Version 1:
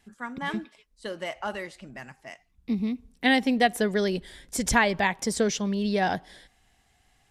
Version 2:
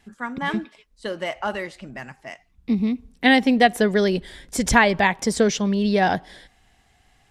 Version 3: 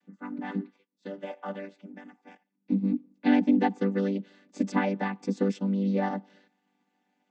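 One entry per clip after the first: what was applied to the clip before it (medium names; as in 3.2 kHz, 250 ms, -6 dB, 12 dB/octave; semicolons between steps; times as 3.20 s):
treble shelf 6.1 kHz -6 dB; trim +6 dB
vocoder on a held chord major triad, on G3; trim -6 dB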